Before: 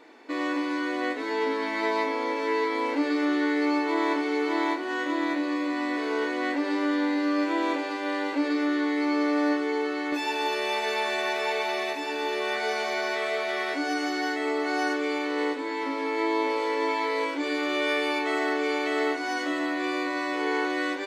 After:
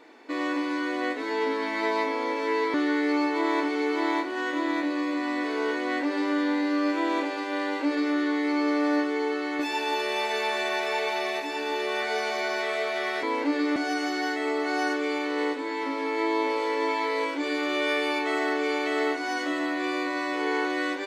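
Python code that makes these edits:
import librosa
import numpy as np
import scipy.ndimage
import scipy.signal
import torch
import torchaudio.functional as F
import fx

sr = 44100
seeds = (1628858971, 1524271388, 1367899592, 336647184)

y = fx.edit(x, sr, fx.move(start_s=2.74, length_s=0.53, to_s=13.76), tone=tone)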